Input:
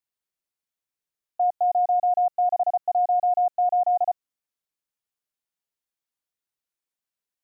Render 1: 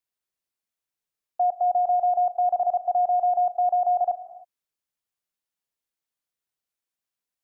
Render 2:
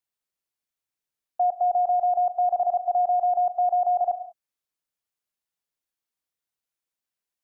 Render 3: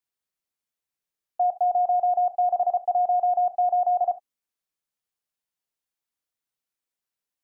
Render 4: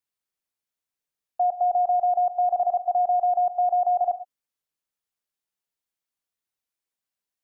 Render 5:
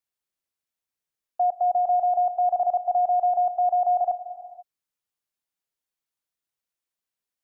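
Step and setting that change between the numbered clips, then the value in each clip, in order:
reverb whose tail is shaped and stops, gate: 340, 220, 90, 140, 520 milliseconds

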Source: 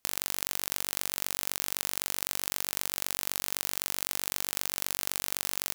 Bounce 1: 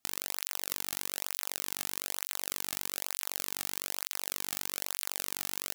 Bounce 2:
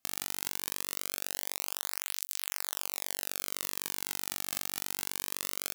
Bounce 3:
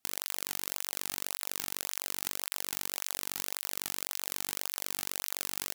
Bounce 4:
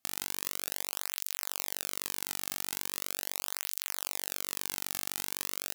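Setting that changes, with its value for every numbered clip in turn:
through-zero flanger with one copy inverted, nulls at: 1.1, 0.22, 1.8, 0.4 Hertz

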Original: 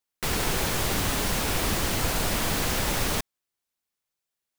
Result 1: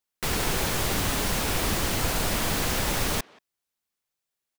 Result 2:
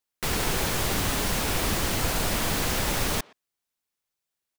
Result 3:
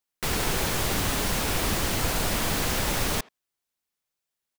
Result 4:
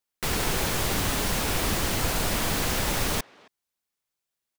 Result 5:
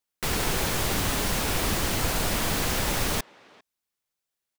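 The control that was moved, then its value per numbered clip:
far-end echo of a speakerphone, delay time: 180, 120, 80, 270, 400 milliseconds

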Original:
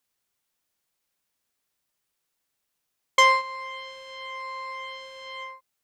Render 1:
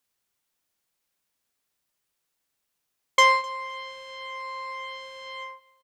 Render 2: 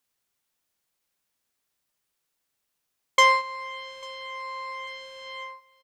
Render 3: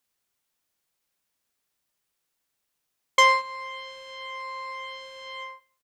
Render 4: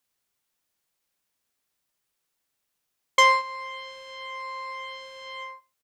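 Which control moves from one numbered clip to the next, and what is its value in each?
repeating echo, delay time: 256, 844, 101, 69 milliseconds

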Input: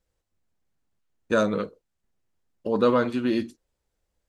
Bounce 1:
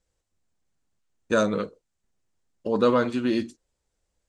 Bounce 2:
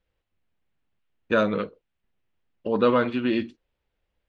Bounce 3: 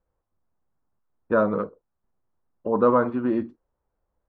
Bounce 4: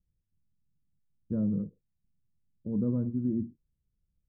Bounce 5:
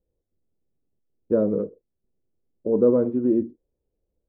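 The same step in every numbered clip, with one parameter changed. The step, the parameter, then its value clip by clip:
low-pass with resonance, frequency: 8,000, 2,900, 1,100, 160, 430 Hertz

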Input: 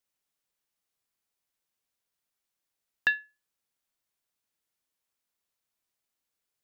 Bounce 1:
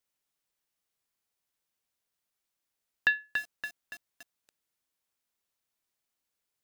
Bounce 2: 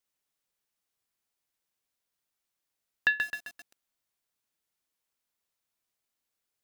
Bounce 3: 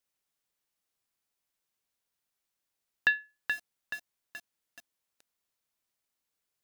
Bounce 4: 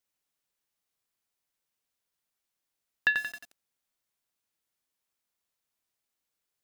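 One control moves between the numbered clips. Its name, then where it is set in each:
feedback echo at a low word length, delay time: 284, 131, 427, 89 milliseconds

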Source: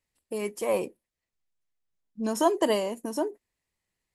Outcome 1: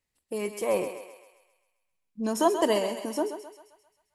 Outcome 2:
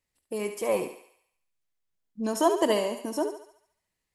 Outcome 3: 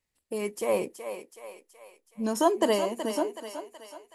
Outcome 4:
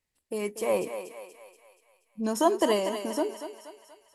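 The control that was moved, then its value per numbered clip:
feedback echo with a high-pass in the loop, delay time: 132, 71, 374, 239 milliseconds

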